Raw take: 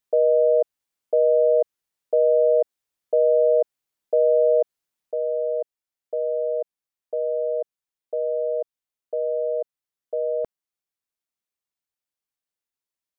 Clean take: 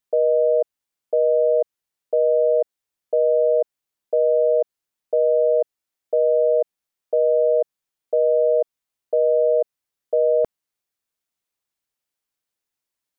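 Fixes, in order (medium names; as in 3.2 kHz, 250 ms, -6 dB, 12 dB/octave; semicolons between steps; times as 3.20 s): gain correction +7 dB, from 5.11 s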